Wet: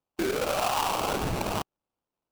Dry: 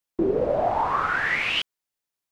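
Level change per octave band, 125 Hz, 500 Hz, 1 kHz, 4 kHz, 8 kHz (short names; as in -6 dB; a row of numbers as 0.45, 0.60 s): +2.0, -5.0, -3.5, -4.5, +13.5 dB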